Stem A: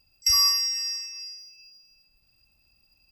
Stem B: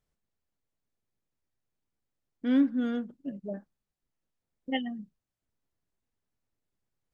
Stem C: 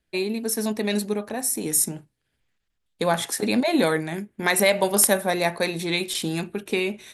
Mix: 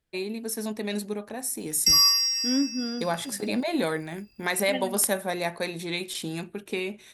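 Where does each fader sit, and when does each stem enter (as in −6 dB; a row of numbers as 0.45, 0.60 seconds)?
+1.5, −2.0, −6.0 decibels; 1.60, 0.00, 0.00 seconds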